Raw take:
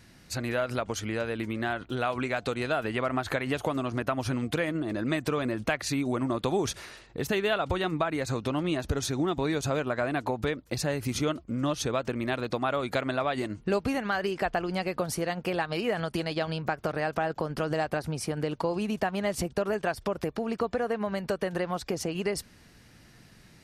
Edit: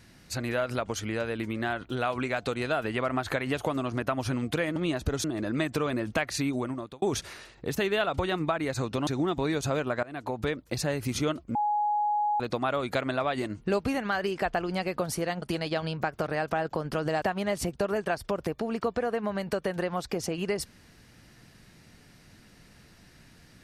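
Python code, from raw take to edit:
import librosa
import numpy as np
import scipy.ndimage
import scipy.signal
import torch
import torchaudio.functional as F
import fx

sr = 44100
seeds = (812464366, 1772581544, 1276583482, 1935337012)

y = fx.edit(x, sr, fx.fade_out_span(start_s=6.02, length_s=0.52),
    fx.move(start_s=8.59, length_s=0.48, to_s=4.76),
    fx.fade_in_from(start_s=10.03, length_s=0.56, curve='qsin', floor_db=-23.0),
    fx.bleep(start_s=11.55, length_s=0.85, hz=835.0, db=-23.5),
    fx.cut(start_s=15.42, length_s=0.65),
    fx.cut(start_s=17.87, length_s=1.12), tone=tone)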